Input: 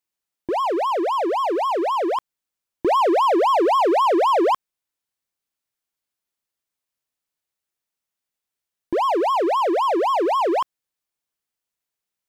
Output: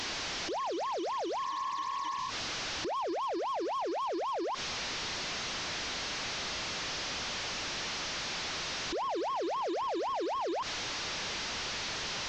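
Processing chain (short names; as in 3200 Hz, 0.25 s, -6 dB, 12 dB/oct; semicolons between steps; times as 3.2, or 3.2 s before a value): delta modulation 32 kbps, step -23 dBFS; spectral repair 1.47–2.27, 310–2200 Hz before; limiter -22 dBFS, peak gain reduction 12.5 dB; gain -6.5 dB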